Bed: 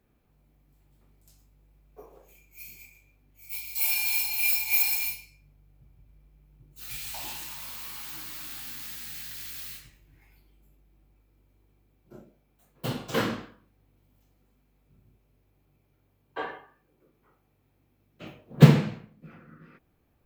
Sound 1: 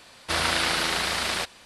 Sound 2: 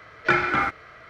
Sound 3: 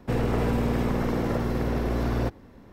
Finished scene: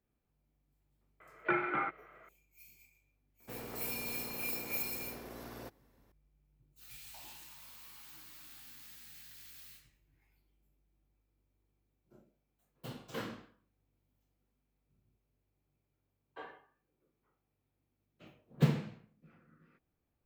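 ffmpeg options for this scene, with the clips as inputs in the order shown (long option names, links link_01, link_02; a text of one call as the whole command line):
ffmpeg -i bed.wav -i cue0.wav -i cue1.wav -i cue2.wav -filter_complex "[0:a]volume=-14dB[link_01];[2:a]highpass=frequency=150:width=0.5412,highpass=frequency=150:width=1.3066,equalizer=frequency=250:width_type=q:width=4:gain=-9,equalizer=frequency=350:width_type=q:width=4:gain=4,equalizer=frequency=1700:width_type=q:width=4:gain=-6,lowpass=frequency=2500:width=0.5412,lowpass=frequency=2500:width=1.3066[link_02];[3:a]aemphasis=mode=production:type=bsi[link_03];[link_02]atrim=end=1.09,asetpts=PTS-STARTPTS,volume=-10dB,afade=type=in:duration=0.004:curve=hsin,afade=type=out:start_time=1.086:duration=0.004:curve=hsin,adelay=1200[link_04];[link_03]atrim=end=2.72,asetpts=PTS-STARTPTS,volume=-17dB,afade=type=in:duration=0.004:curve=hsin,afade=type=out:start_time=2.716:duration=0.004:curve=hsin,adelay=3400[link_05];[link_01][link_04][link_05]amix=inputs=3:normalize=0" out.wav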